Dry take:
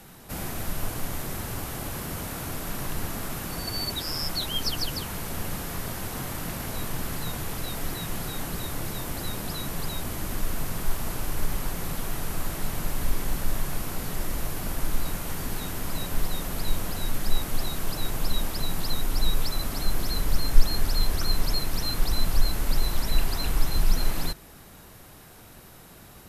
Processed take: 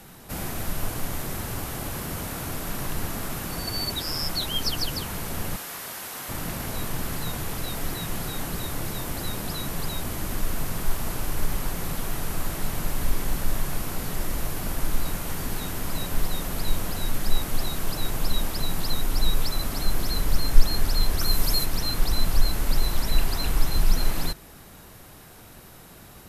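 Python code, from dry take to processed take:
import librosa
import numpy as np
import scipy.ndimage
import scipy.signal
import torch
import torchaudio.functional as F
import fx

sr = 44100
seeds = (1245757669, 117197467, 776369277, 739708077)

y = fx.highpass(x, sr, hz=930.0, slope=6, at=(5.56, 6.29))
y = fx.high_shelf(y, sr, hz=fx.line((21.18, 11000.0), (21.64, 5800.0)), db=9.5, at=(21.18, 21.64), fade=0.02)
y = F.gain(torch.from_numpy(y), 1.5).numpy()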